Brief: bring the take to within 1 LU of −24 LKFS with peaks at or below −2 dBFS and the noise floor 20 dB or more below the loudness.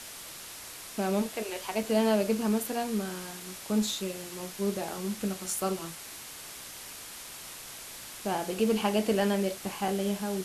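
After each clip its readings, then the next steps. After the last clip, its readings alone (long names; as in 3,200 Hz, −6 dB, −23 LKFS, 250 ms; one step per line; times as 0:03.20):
number of dropouts 2; longest dropout 1.8 ms; background noise floor −44 dBFS; target noise floor −52 dBFS; integrated loudness −31.5 LKFS; sample peak −14.5 dBFS; target loudness −24.0 LKFS
→ repair the gap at 0:01.83/0:09.88, 1.8 ms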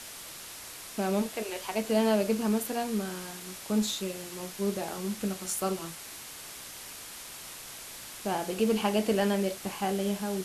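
number of dropouts 0; background noise floor −44 dBFS; target noise floor −52 dBFS
→ broadband denoise 8 dB, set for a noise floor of −44 dBFS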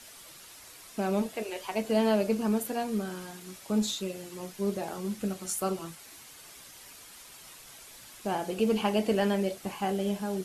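background noise floor −50 dBFS; target noise floor −51 dBFS
→ broadband denoise 6 dB, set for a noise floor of −50 dBFS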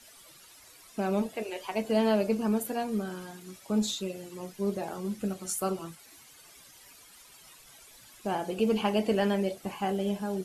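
background noise floor −55 dBFS; integrated loudness −30.5 LKFS; sample peak −15.5 dBFS; target loudness −24.0 LKFS
→ level +6.5 dB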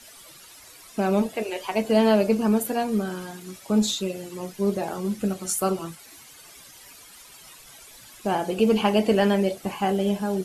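integrated loudness −24.0 LKFS; sample peak −9.0 dBFS; background noise floor −48 dBFS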